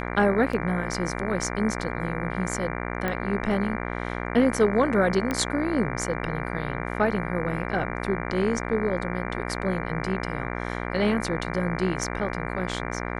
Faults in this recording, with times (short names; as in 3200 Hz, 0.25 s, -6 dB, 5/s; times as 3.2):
buzz 60 Hz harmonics 39 -31 dBFS
0.53 gap 3.7 ms
3.08 pop -14 dBFS
5.31 pop -13 dBFS